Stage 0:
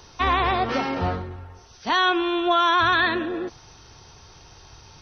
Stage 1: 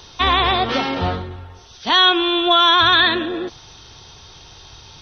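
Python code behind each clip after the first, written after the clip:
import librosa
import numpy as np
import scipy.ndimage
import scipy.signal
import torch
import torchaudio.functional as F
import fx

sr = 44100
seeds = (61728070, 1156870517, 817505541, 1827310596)

y = fx.peak_eq(x, sr, hz=3500.0, db=10.5, octaves=0.53)
y = y * 10.0 ** (3.5 / 20.0)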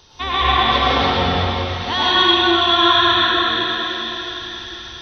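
y = fx.rider(x, sr, range_db=10, speed_s=2.0)
y = fx.echo_split(y, sr, split_hz=1700.0, low_ms=100, high_ms=666, feedback_pct=52, wet_db=-10.5)
y = fx.rev_plate(y, sr, seeds[0], rt60_s=3.7, hf_ratio=1.0, predelay_ms=90, drr_db=-9.5)
y = y * 10.0 ** (-11.0 / 20.0)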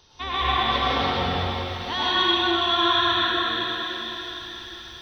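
y = fx.echo_crushed(x, sr, ms=154, feedback_pct=55, bits=7, wet_db=-15.0)
y = y * 10.0 ** (-7.0 / 20.0)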